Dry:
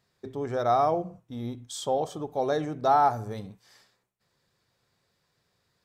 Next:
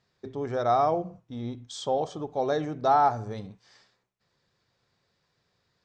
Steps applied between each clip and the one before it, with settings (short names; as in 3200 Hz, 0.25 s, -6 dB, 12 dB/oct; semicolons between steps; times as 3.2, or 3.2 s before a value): LPF 6700 Hz 24 dB/oct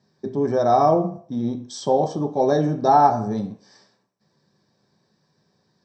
reverb RT60 0.50 s, pre-delay 3 ms, DRR 3 dB; gain -4 dB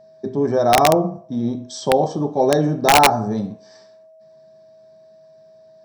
whine 640 Hz -48 dBFS; wrapped overs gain 7.5 dB; gain +2.5 dB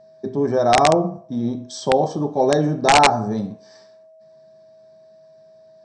Chebyshev low-pass 8800 Hz, order 10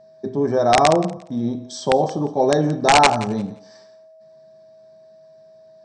thinning echo 0.175 s, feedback 20%, high-pass 420 Hz, level -17 dB